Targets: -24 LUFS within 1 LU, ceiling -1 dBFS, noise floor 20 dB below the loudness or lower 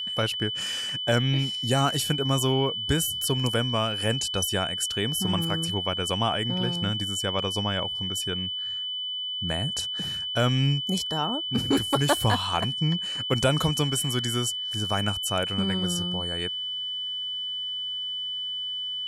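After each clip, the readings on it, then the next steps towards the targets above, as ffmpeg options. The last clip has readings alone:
steady tone 3000 Hz; tone level -29 dBFS; loudness -26.0 LUFS; peak -9.0 dBFS; loudness target -24.0 LUFS
-> -af "bandreject=f=3k:w=30"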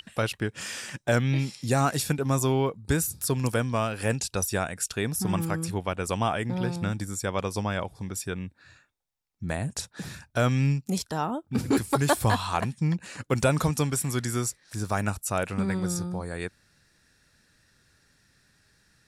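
steady tone none; loudness -28.0 LUFS; peak -9.5 dBFS; loudness target -24.0 LUFS
-> -af "volume=4dB"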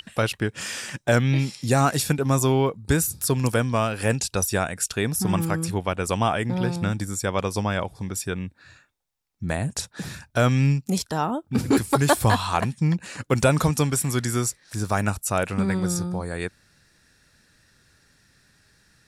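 loudness -24.0 LUFS; peak -5.5 dBFS; noise floor -64 dBFS

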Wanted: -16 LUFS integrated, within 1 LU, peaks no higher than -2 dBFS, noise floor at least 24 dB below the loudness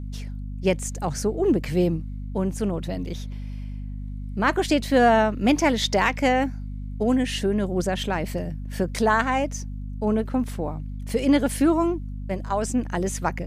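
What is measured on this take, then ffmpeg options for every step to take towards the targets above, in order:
hum 50 Hz; harmonics up to 250 Hz; hum level -30 dBFS; loudness -24.0 LUFS; peak -7.0 dBFS; loudness target -16.0 LUFS
-> -af "bandreject=f=50:t=h:w=4,bandreject=f=100:t=h:w=4,bandreject=f=150:t=h:w=4,bandreject=f=200:t=h:w=4,bandreject=f=250:t=h:w=4"
-af "volume=8dB,alimiter=limit=-2dB:level=0:latency=1"

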